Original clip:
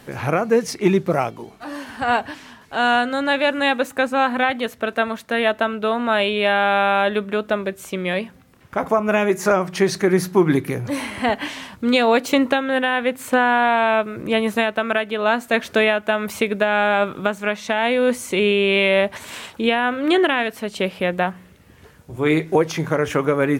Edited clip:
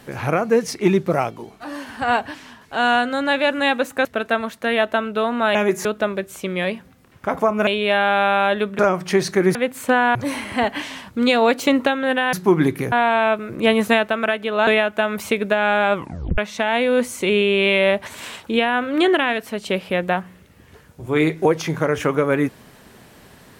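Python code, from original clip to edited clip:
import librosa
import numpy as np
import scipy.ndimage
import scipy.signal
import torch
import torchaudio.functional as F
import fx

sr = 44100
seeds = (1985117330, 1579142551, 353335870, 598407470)

y = fx.edit(x, sr, fx.cut(start_s=4.05, length_s=0.67),
    fx.swap(start_s=6.22, length_s=1.12, other_s=9.16, other_length_s=0.3),
    fx.swap(start_s=10.22, length_s=0.59, other_s=12.99, other_length_s=0.6),
    fx.clip_gain(start_s=14.3, length_s=0.46, db=3.0),
    fx.cut(start_s=15.34, length_s=0.43),
    fx.tape_stop(start_s=17.04, length_s=0.44), tone=tone)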